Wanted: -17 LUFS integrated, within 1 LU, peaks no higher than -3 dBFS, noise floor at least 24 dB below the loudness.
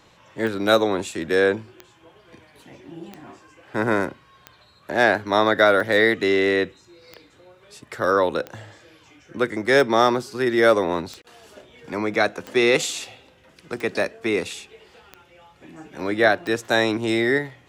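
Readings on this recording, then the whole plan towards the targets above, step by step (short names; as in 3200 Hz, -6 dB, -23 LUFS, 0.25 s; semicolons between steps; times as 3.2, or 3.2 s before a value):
clicks 13; loudness -21.0 LUFS; peak -3.0 dBFS; loudness target -17.0 LUFS
-> de-click; gain +4 dB; limiter -3 dBFS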